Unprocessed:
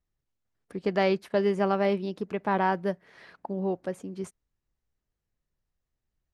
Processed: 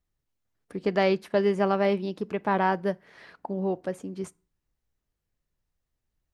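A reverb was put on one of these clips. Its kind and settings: FDN reverb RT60 0.37 s, low-frequency decay 1.25×, high-frequency decay 0.75×, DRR 19.5 dB; trim +1.5 dB

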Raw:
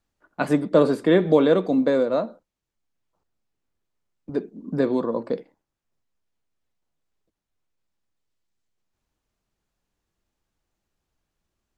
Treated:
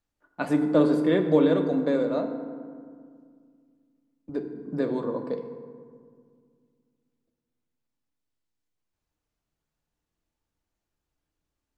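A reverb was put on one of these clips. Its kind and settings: FDN reverb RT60 2 s, low-frequency decay 1.4×, high-frequency decay 0.45×, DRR 5.5 dB; trim -6 dB

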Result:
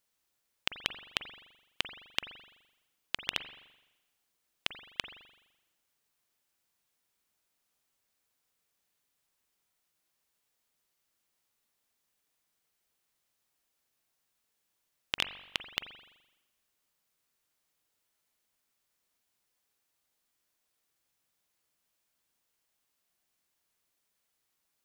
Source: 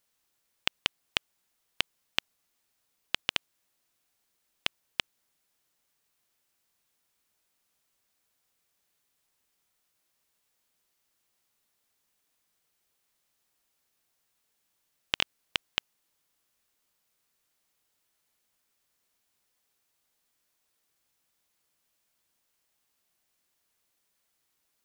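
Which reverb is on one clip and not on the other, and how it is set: spring tank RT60 1 s, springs 42 ms, chirp 80 ms, DRR 9.5 dB; trim -3.5 dB

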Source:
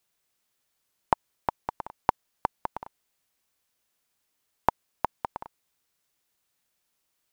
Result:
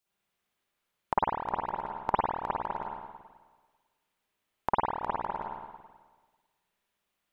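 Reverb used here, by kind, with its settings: spring tank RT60 1.4 s, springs 49/54 ms, chirp 50 ms, DRR -9 dB; trim -9 dB

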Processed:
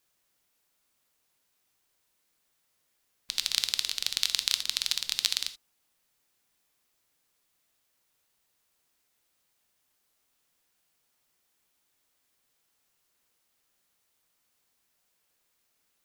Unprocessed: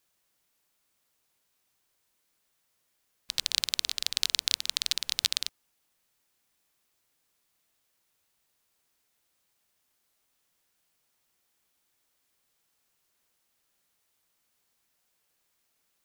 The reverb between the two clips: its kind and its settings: gated-style reverb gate 100 ms flat, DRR 10 dB

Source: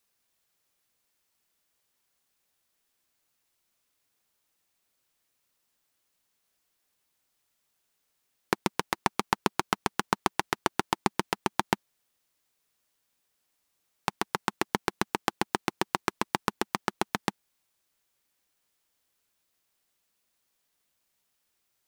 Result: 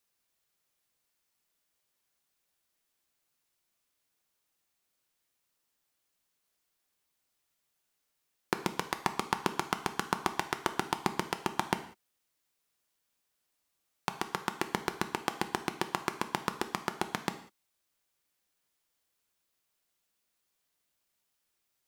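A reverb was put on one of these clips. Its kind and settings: gated-style reverb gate 220 ms falling, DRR 8.5 dB; trim -4 dB

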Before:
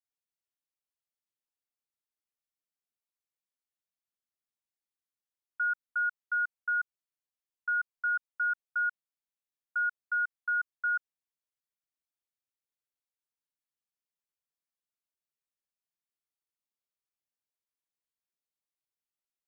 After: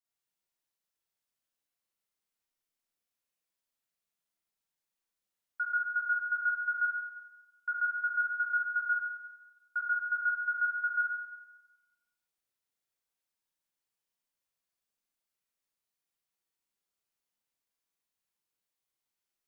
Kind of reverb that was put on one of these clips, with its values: Schroeder reverb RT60 1.1 s, combs from 33 ms, DRR -5.5 dB; trim -1.5 dB

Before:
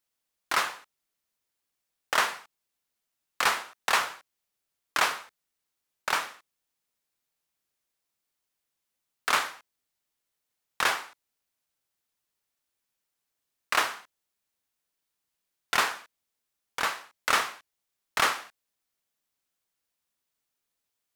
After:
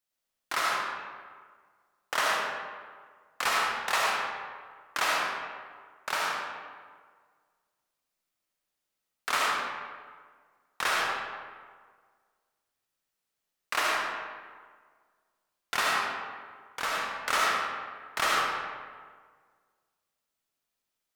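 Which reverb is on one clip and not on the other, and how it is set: algorithmic reverb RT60 1.7 s, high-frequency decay 0.6×, pre-delay 30 ms, DRR -4 dB; trim -5 dB

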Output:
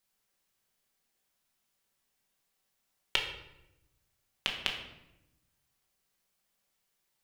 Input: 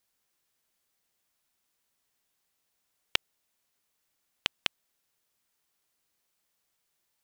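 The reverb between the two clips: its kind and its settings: simulated room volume 330 m³, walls mixed, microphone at 1.1 m; trim -3 dB

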